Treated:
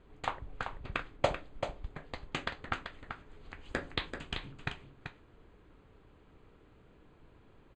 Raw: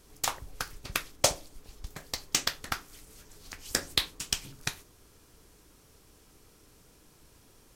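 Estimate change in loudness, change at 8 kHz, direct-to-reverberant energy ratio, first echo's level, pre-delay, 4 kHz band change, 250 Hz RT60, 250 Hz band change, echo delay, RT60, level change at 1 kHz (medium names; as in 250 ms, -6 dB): -8.0 dB, -26.5 dB, no reverb, -7.5 dB, no reverb, -11.0 dB, no reverb, +0.5 dB, 386 ms, no reverb, -0.5 dB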